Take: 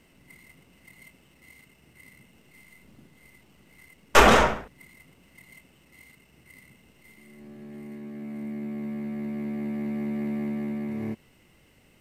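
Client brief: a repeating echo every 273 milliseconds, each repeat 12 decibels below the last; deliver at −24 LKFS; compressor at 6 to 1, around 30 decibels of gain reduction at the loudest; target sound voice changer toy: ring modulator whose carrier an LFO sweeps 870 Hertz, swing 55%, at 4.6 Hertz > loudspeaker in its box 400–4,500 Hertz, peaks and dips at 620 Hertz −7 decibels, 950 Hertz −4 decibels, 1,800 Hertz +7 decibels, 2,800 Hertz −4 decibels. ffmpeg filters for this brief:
ffmpeg -i in.wav -af "acompressor=threshold=-44dB:ratio=6,aecho=1:1:273|546|819:0.251|0.0628|0.0157,aeval=exprs='val(0)*sin(2*PI*870*n/s+870*0.55/4.6*sin(2*PI*4.6*n/s))':channel_layout=same,highpass=400,equalizer=frequency=620:width_type=q:width=4:gain=-7,equalizer=frequency=950:width_type=q:width=4:gain=-4,equalizer=frequency=1800:width_type=q:width=4:gain=7,equalizer=frequency=2800:width_type=q:width=4:gain=-4,lowpass=frequency=4500:width=0.5412,lowpass=frequency=4500:width=1.3066,volume=27dB" out.wav

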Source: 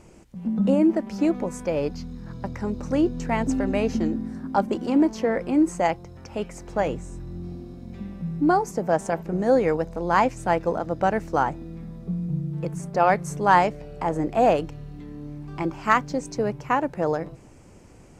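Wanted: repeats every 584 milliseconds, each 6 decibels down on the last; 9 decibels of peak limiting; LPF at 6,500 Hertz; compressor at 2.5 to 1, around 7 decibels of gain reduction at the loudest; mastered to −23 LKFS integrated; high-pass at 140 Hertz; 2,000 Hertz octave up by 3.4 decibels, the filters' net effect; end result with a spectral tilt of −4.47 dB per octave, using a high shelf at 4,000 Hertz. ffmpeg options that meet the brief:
ffmpeg -i in.wav -af "highpass=140,lowpass=6500,equalizer=frequency=2000:width_type=o:gain=5.5,highshelf=frequency=4000:gain=-6,acompressor=threshold=-23dB:ratio=2.5,alimiter=limit=-18.5dB:level=0:latency=1,aecho=1:1:584|1168|1752|2336|2920|3504:0.501|0.251|0.125|0.0626|0.0313|0.0157,volume=6.5dB" out.wav

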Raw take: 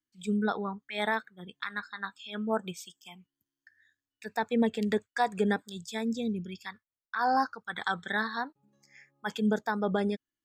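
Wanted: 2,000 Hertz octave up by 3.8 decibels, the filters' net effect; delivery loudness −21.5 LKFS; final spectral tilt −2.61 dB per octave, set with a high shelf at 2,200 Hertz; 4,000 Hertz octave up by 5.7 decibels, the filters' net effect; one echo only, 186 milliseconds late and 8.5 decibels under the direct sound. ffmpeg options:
ffmpeg -i in.wav -af "equalizer=frequency=2000:width_type=o:gain=5.5,highshelf=frequency=2200:gain=-4.5,equalizer=frequency=4000:width_type=o:gain=9,aecho=1:1:186:0.376,volume=8.5dB" out.wav

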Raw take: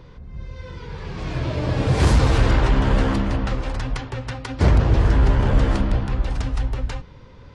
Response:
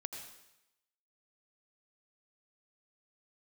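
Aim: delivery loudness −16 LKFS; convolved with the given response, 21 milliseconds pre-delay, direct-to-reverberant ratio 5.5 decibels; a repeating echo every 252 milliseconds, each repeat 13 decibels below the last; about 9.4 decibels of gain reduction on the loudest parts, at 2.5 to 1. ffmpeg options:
-filter_complex "[0:a]acompressor=threshold=-26dB:ratio=2.5,aecho=1:1:252|504|756:0.224|0.0493|0.0108,asplit=2[link_01][link_02];[1:a]atrim=start_sample=2205,adelay=21[link_03];[link_02][link_03]afir=irnorm=-1:irlink=0,volume=-4dB[link_04];[link_01][link_04]amix=inputs=2:normalize=0,volume=12dB"

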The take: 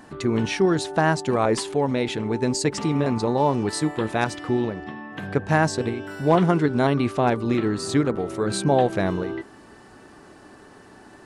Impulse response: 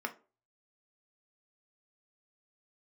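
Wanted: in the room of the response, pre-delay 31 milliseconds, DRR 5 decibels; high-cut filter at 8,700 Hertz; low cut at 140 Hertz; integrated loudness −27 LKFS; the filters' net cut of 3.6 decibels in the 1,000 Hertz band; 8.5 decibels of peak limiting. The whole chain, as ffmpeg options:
-filter_complex "[0:a]highpass=140,lowpass=8700,equalizer=frequency=1000:width_type=o:gain=-5,alimiter=limit=-15dB:level=0:latency=1,asplit=2[link_01][link_02];[1:a]atrim=start_sample=2205,adelay=31[link_03];[link_02][link_03]afir=irnorm=-1:irlink=0,volume=-8.5dB[link_04];[link_01][link_04]amix=inputs=2:normalize=0,volume=-1.5dB"

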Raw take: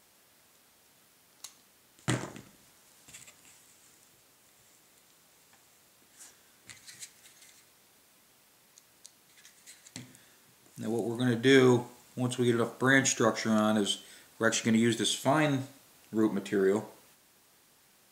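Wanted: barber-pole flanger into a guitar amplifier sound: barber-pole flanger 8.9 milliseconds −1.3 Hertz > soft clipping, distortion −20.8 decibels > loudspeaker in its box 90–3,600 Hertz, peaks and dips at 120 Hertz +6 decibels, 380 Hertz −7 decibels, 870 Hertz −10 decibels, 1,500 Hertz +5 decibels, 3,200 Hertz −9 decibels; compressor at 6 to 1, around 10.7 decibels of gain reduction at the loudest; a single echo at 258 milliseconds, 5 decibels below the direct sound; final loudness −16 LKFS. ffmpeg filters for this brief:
ffmpeg -i in.wav -filter_complex "[0:a]acompressor=threshold=-29dB:ratio=6,aecho=1:1:258:0.562,asplit=2[link_01][link_02];[link_02]adelay=8.9,afreqshift=-1.3[link_03];[link_01][link_03]amix=inputs=2:normalize=1,asoftclip=threshold=-25.5dB,highpass=90,equalizer=frequency=120:width_type=q:width=4:gain=6,equalizer=frequency=380:width_type=q:width=4:gain=-7,equalizer=frequency=870:width_type=q:width=4:gain=-10,equalizer=frequency=1500:width_type=q:width=4:gain=5,equalizer=frequency=3200:width_type=q:width=4:gain=-9,lowpass=frequency=3600:width=0.5412,lowpass=frequency=3600:width=1.3066,volume=23dB" out.wav

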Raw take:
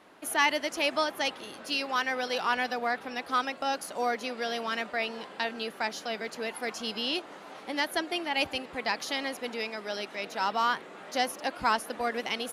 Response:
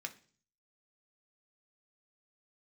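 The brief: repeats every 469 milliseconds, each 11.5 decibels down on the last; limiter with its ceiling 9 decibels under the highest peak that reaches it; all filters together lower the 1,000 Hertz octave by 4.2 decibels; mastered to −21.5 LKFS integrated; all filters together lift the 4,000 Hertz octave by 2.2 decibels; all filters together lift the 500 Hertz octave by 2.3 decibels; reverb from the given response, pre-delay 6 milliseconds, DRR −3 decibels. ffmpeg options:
-filter_complex "[0:a]equalizer=frequency=500:width_type=o:gain=5,equalizer=frequency=1000:width_type=o:gain=-8,equalizer=frequency=4000:width_type=o:gain=3.5,alimiter=limit=-21.5dB:level=0:latency=1,aecho=1:1:469|938|1407:0.266|0.0718|0.0194,asplit=2[link_01][link_02];[1:a]atrim=start_sample=2205,adelay=6[link_03];[link_02][link_03]afir=irnorm=-1:irlink=0,volume=4dB[link_04];[link_01][link_04]amix=inputs=2:normalize=0,volume=7.5dB"

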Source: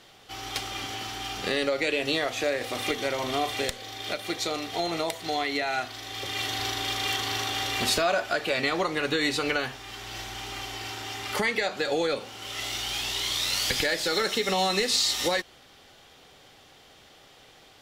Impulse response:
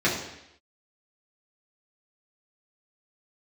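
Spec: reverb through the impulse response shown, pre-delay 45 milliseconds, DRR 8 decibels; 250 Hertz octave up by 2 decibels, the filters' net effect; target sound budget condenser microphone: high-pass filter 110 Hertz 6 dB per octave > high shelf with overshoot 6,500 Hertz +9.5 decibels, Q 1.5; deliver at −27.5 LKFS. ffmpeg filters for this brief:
-filter_complex "[0:a]equalizer=frequency=250:width_type=o:gain=3.5,asplit=2[link_01][link_02];[1:a]atrim=start_sample=2205,adelay=45[link_03];[link_02][link_03]afir=irnorm=-1:irlink=0,volume=-23.5dB[link_04];[link_01][link_04]amix=inputs=2:normalize=0,highpass=frequency=110:poles=1,highshelf=frequency=6500:width_type=q:width=1.5:gain=9.5,volume=-1.5dB"

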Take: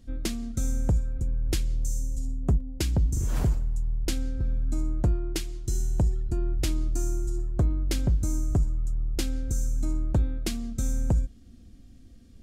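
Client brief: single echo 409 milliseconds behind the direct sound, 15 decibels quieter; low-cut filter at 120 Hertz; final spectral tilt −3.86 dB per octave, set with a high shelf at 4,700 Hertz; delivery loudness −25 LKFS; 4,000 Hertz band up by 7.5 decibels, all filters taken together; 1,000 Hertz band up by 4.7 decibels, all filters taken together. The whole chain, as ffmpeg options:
ffmpeg -i in.wav -af "highpass=120,equalizer=frequency=1000:width_type=o:gain=6,equalizer=frequency=4000:width_type=o:gain=6.5,highshelf=frequency=4700:gain=5,aecho=1:1:409:0.178,volume=7.5dB" out.wav

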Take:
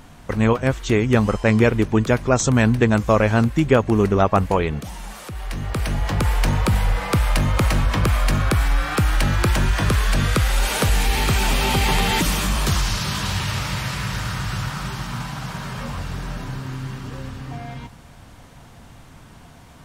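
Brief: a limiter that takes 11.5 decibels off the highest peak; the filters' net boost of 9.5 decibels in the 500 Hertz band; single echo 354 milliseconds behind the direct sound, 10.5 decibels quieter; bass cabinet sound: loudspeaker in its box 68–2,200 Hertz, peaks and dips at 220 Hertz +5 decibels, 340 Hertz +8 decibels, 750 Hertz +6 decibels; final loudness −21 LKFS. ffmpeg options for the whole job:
ffmpeg -i in.wav -af "equalizer=frequency=500:width_type=o:gain=8.5,alimiter=limit=-11dB:level=0:latency=1,highpass=frequency=68:width=0.5412,highpass=frequency=68:width=1.3066,equalizer=frequency=220:width_type=q:width=4:gain=5,equalizer=frequency=340:width_type=q:width=4:gain=8,equalizer=frequency=750:width_type=q:width=4:gain=6,lowpass=frequency=2200:width=0.5412,lowpass=frequency=2200:width=1.3066,aecho=1:1:354:0.299,volume=-0.5dB" out.wav

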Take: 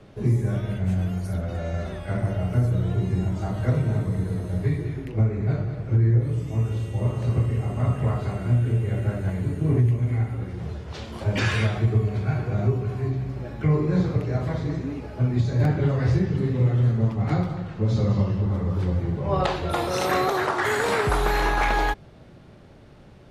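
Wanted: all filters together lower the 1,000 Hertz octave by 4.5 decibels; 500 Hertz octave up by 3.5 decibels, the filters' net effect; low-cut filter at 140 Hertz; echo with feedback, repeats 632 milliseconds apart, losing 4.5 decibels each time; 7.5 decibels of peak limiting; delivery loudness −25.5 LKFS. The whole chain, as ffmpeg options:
ffmpeg -i in.wav -af "highpass=140,equalizer=frequency=500:width_type=o:gain=6.5,equalizer=frequency=1000:width_type=o:gain=-9,alimiter=limit=-17.5dB:level=0:latency=1,aecho=1:1:632|1264|1896|2528|3160|3792|4424|5056|5688:0.596|0.357|0.214|0.129|0.0772|0.0463|0.0278|0.0167|0.01,volume=1dB" out.wav

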